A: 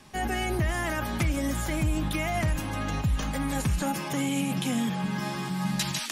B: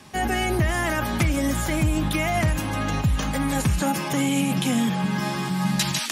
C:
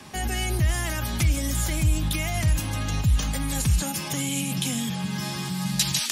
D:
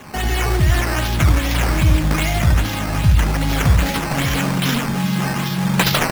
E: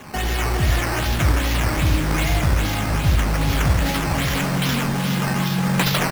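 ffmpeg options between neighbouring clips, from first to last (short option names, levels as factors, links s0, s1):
-af "highpass=52,volume=1.88"
-filter_complex "[0:a]acrossover=split=130|3000[s0][s1][s2];[s1]acompressor=threshold=0.00562:ratio=2[s3];[s0][s3][s2]amix=inputs=3:normalize=0,volume=1.41"
-af "aecho=1:1:71|583:0.596|0.316,acrusher=samples=9:mix=1:aa=0.000001:lfo=1:lforange=9:lforate=2.5,volume=2.11"
-filter_complex "[0:a]asplit=2[s0][s1];[s1]aeval=exprs='(mod(5.31*val(0)+1,2)-1)/5.31':c=same,volume=0.501[s2];[s0][s2]amix=inputs=2:normalize=0,aecho=1:1:418:0.376,volume=0.596"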